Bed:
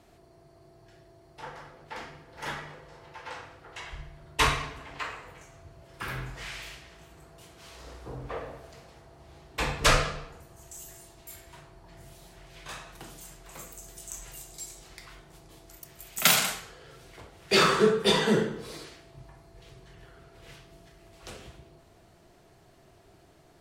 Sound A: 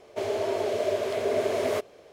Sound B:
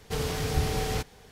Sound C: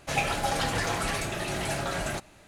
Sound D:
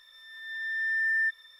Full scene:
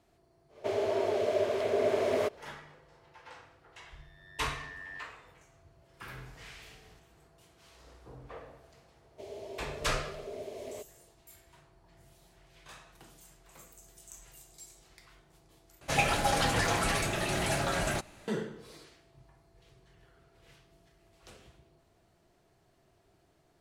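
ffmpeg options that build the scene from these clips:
ffmpeg -i bed.wav -i cue0.wav -i cue1.wav -i cue2.wav -i cue3.wav -filter_complex "[1:a]asplit=2[link_01][link_02];[0:a]volume=-10dB[link_03];[link_01]highshelf=frequency=5100:gain=-6.5[link_04];[4:a]tremolo=f=94:d=0.824[link_05];[2:a]acompressor=threshold=-39dB:ratio=6:attack=3.2:release=140:knee=1:detection=peak[link_06];[link_02]equalizer=frequency=1400:width_type=o:width=0.91:gain=-13[link_07];[link_03]asplit=2[link_08][link_09];[link_08]atrim=end=15.814[link_10];[3:a]atrim=end=2.47[link_11];[link_09]atrim=start=18.276[link_12];[link_04]atrim=end=2.12,asetpts=PTS-STARTPTS,volume=-2dB,afade=type=in:duration=0.1,afade=type=out:start_time=2.02:duration=0.1,adelay=480[link_13];[link_05]atrim=end=1.59,asetpts=PTS-STARTPTS,volume=-15.5dB,afade=type=in:duration=0.004:curve=hsin,afade=type=out:start_time=1.586:duration=0.004:curve=hsin,adelay=3750[link_14];[link_06]atrim=end=1.31,asetpts=PTS-STARTPTS,volume=-17.5dB,afade=type=in:duration=0.004:curve=hsin,afade=type=out:start_time=1.306:duration=0.004:curve=hsin,adelay=5970[link_15];[link_07]atrim=end=2.12,asetpts=PTS-STARTPTS,volume=-14.5dB,afade=type=in:duration=0.004:curve=hsin,afade=type=out:start_time=2.116:duration=0.004:curve=hsin,adelay=9020[link_16];[link_10][link_11]acrossfade=duration=0.004:curve1=hsin:curve2=hsin[link_17];[link_17][link_12]acrossfade=duration=0.004:curve1=hsin:curve2=hsin[link_18];[link_18][link_13][link_14][link_15][link_16]amix=inputs=5:normalize=0" out.wav

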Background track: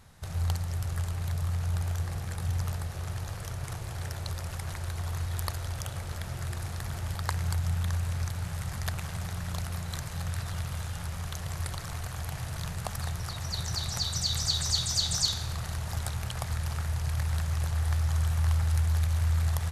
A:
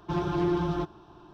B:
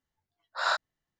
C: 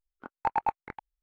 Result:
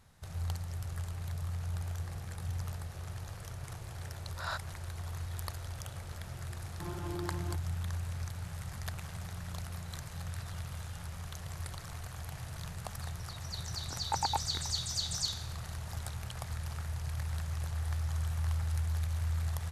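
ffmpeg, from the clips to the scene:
ffmpeg -i bed.wav -i cue0.wav -i cue1.wav -i cue2.wav -filter_complex "[0:a]volume=-7dB[link_01];[2:a]atrim=end=1.19,asetpts=PTS-STARTPTS,volume=-11dB,afade=type=in:duration=0.004:curve=hsin,afade=type=out:start_time=1.186:duration=0.004:curve=hsin,adelay=168021S[link_02];[1:a]atrim=end=1.33,asetpts=PTS-STARTPTS,volume=-14dB,afade=type=in:duration=0.004:curve=hsin,afade=type=out:start_time=1.326:duration=0.004:curve=hsin,adelay=6710[link_03];[3:a]atrim=end=1.22,asetpts=PTS-STARTPTS,volume=-5dB,afade=type=in:duration=0.004:curve=hsin,afade=type=out:start_time=1.216:duration=0.004:curve=hsin,adelay=13670[link_04];[link_01][link_02][link_03][link_04]amix=inputs=4:normalize=0" out.wav

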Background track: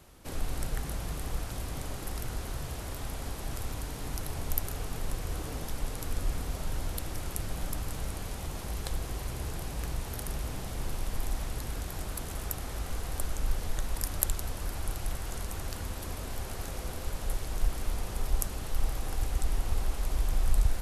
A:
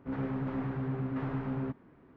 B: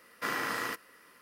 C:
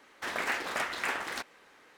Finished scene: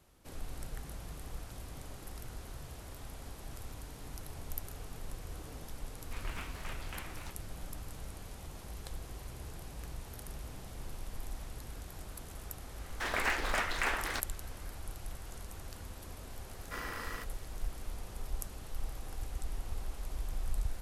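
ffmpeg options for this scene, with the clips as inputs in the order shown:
ffmpeg -i bed.wav -i cue0.wav -i cue1.wav -i cue2.wav -filter_complex "[3:a]asplit=2[link_01][link_02];[0:a]volume=-9.5dB[link_03];[link_01]aeval=exprs='val(0)*sin(2*PI*620*n/s)':channel_layout=same,atrim=end=1.97,asetpts=PTS-STARTPTS,volume=-11dB,afade=type=in:duration=0.004:curve=hsin,afade=type=out:start_time=1.966:duration=0.004:curve=hsin,adelay=259749S[link_04];[link_02]atrim=end=1.97,asetpts=PTS-STARTPTS,volume=-0.5dB,afade=type=in:duration=0.004:curve=hsin,afade=type=out:start_time=1.966:duration=0.004:curve=hsin,adelay=12780[link_05];[2:a]atrim=end=1.21,asetpts=PTS-STARTPTS,volume=-9dB,afade=type=in:duration=0.004:curve=hsin,afade=type=out:start_time=1.206:duration=0.004:curve=hsin,adelay=16490[link_06];[link_03][link_04][link_05][link_06]amix=inputs=4:normalize=0" out.wav

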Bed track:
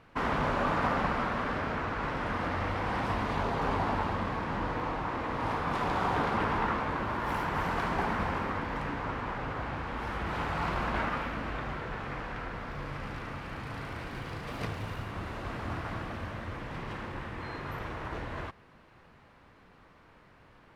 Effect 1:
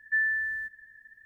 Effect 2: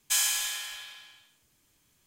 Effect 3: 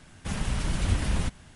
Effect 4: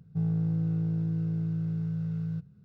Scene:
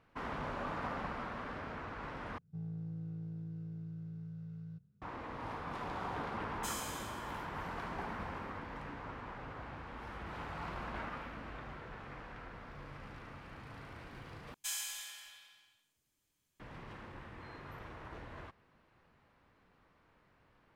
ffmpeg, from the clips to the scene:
ffmpeg -i bed.wav -i cue0.wav -i cue1.wav -i cue2.wav -i cue3.wav -filter_complex "[2:a]asplit=2[link_01][link_02];[0:a]volume=-11dB,asplit=3[link_03][link_04][link_05];[link_03]atrim=end=2.384[link_06];[4:a]atrim=end=2.64,asetpts=PTS-STARTPTS,volume=-14.5dB[link_07];[link_04]atrim=start=5.016:end=14.544[link_08];[link_02]atrim=end=2.06,asetpts=PTS-STARTPTS,volume=-13.5dB[link_09];[link_05]atrim=start=16.596[link_10];[link_01]atrim=end=2.06,asetpts=PTS-STARTPTS,volume=-17.5dB,afade=type=in:duration=0.004:curve=hsin,afade=type=out:start_time=2.056:duration=0.004:curve=hsin,adelay=6530[link_11];[link_06][link_07]acrossfade=duration=0.004:curve1=hsin:curve2=hsin[link_12];[link_12][link_08]acrossfade=duration=0.004:curve1=hsin:curve2=hsin[link_13];[link_13][link_09]acrossfade=duration=0.004:curve1=hsin:curve2=hsin[link_14];[link_14][link_10]acrossfade=duration=0.004:curve1=hsin:curve2=hsin[link_15];[link_15][link_11]amix=inputs=2:normalize=0" out.wav

